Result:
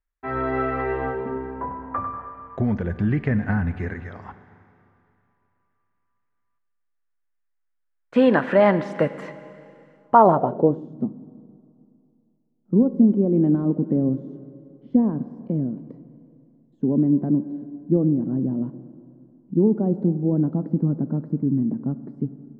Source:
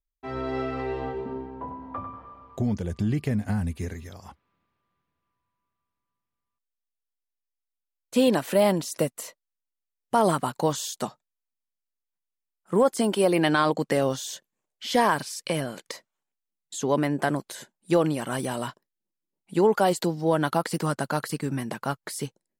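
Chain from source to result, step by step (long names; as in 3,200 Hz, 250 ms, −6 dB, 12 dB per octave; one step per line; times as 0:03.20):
four-comb reverb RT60 2.6 s, combs from 31 ms, DRR 12.5 dB
low-pass filter sweep 1,700 Hz → 250 Hz, 0:09.96–0:10.90
level +3.5 dB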